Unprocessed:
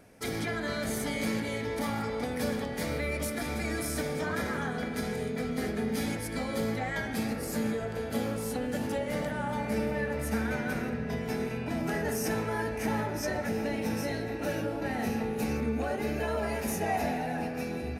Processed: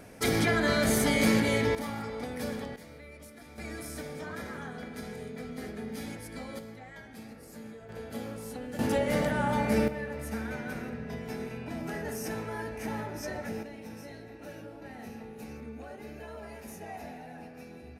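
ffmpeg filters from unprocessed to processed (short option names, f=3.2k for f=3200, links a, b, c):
-af "asetnsamples=n=441:p=0,asendcmd='1.75 volume volume -4dB;2.76 volume volume -16.5dB;3.58 volume volume -7.5dB;6.59 volume volume -14.5dB;7.89 volume volume -7dB;8.79 volume volume 4.5dB;9.88 volume volume -5dB;13.63 volume volume -12.5dB',volume=7dB"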